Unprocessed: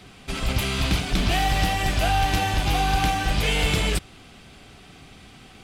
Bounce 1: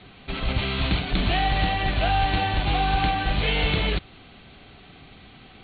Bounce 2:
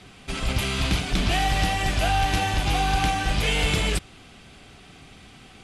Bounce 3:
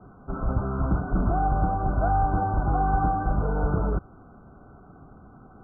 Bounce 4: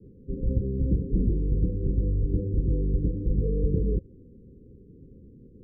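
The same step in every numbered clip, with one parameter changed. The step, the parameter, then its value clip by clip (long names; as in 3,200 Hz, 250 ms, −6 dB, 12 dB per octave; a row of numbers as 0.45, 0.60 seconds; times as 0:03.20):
Chebyshev low-pass filter, frequency: 4,400, 12,000, 1,500, 530 Hertz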